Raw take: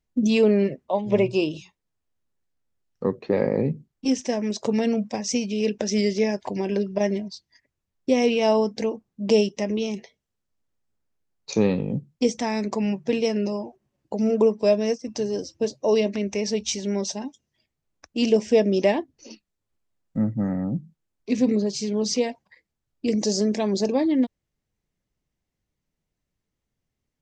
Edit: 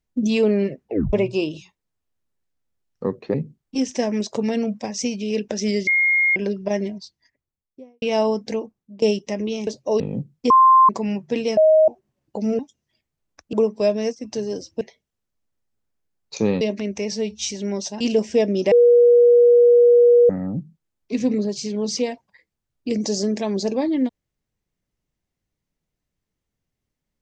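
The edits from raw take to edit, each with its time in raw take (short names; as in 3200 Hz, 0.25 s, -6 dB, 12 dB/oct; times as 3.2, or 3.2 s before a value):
0.83 tape stop 0.30 s
3.34–3.64 cut
4.21–4.55 gain +3 dB
6.17–6.66 bleep 2140 Hz -14.5 dBFS
7.27–8.32 studio fade out
8.87–9.32 fade out linear, to -21.5 dB
9.97–11.77 swap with 15.64–15.97
12.27–12.66 bleep 1050 Hz -8.5 dBFS
13.34–13.65 bleep 628 Hz -10 dBFS
16.48–16.73 stretch 1.5×
17.24–18.18 move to 14.36
18.89–20.47 bleep 480 Hz -9 dBFS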